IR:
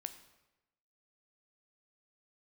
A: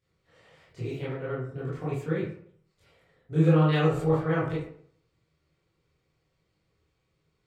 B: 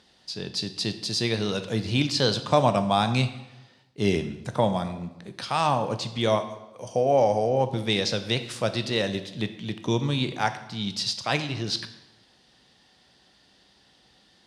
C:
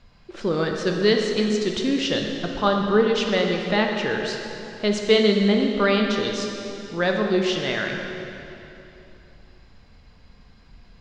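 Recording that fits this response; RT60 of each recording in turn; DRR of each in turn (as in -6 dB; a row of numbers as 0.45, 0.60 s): B; 0.60, 1.0, 3.0 s; -10.0, 9.0, 1.5 dB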